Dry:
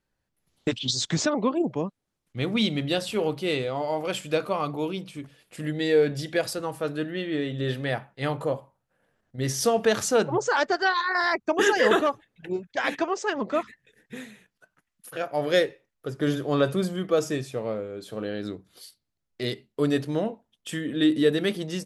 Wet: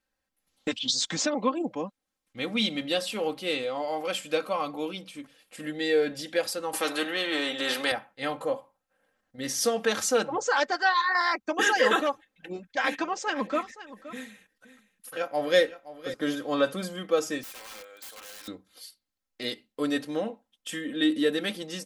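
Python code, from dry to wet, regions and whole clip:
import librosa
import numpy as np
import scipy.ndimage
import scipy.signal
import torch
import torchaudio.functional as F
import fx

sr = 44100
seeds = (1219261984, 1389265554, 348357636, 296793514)

y = fx.chain(x, sr, fx.highpass_res(hz=360.0, q=3.7),
    fx.spectral_comp(ratio=2.0), at=(6.73, 7.92))
y = fx.chain(y, sr, fx.low_shelf(hz=200.0, db=6.0),
    fx.echo_single(ms=520, db=-15.5), at=(12.5, 16.14))
y = fx.chain(y, sr, fx.highpass(hz=950.0, slope=12),
    fx.high_shelf(hz=5800.0, db=12.0),
    fx.overflow_wrap(gain_db=37.5), at=(17.43, 18.48))
y = fx.low_shelf(y, sr, hz=370.0, db=-9.5)
y = y + 0.64 * np.pad(y, (int(3.8 * sr / 1000.0), 0))[:len(y)]
y = y * librosa.db_to_amplitude(-1.0)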